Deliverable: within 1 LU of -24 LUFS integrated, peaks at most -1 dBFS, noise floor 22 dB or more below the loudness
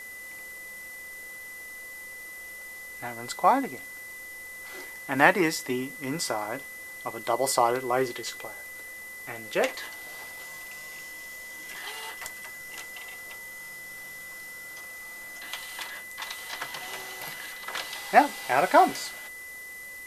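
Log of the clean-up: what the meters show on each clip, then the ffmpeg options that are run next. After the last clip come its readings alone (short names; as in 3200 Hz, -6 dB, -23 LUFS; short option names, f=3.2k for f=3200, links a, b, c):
steady tone 2000 Hz; tone level -40 dBFS; noise floor -42 dBFS; noise floor target -53 dBFS; loudness -30.5 LUFS; peak -3.0 dBFS; loudness target -24.0 LUFS
-> -af "bandreject=f=2k:w=30"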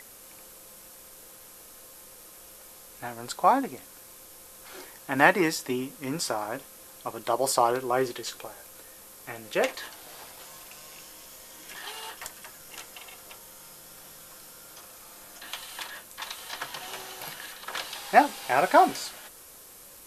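steady tone none; noise floor -49 dBFS; noise floor target -50 dBFS
-> -af "afftdn=nr=6:nf=-49"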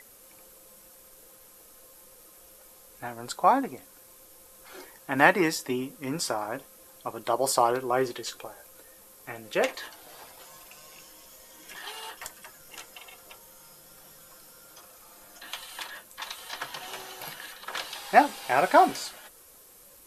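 noise floor -54 dBFS; loudness -27.5 LUFS; peak -3.0 dBFS; loudness target -24.0 LUFS
-> -af "volume=3.5dB,alimiter=limit=-1dB:level=0:latency=1"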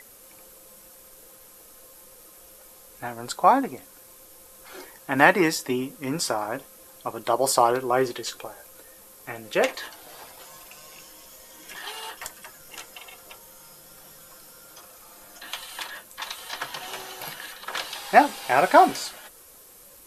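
loudness -24.5 LUFS; peak -1.0 dBFS; noise floor -50 dBFS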